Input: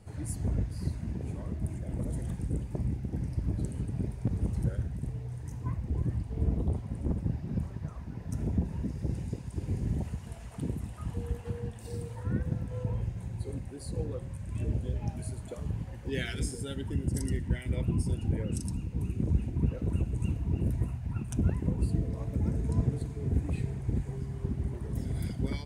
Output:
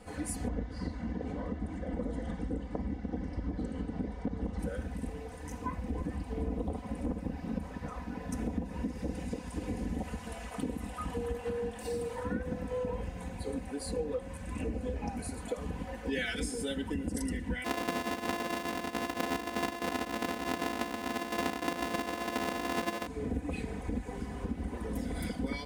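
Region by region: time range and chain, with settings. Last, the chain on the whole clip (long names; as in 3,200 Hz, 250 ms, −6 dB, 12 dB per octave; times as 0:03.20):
0:00.48–0:04.59: high-frequency loss of the air 120 metres + notch filter 2,500 Hz, Q 7
0:14.54–0:15.40: parametric band 3,300 Hz −8 dB 0.3 octaves + highs frequency-modulated by the lows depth 0.21 ms
0:17.64–0:23.07: samples sorted by size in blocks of 128 samples + high-pass filter 120 Hz
whole clip: bass and treble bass −11 dB, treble −5 dB; comb filter 4 ms, depth 95%; downward compressor 3 to 1, threshold −39 dBFS; level +7 dB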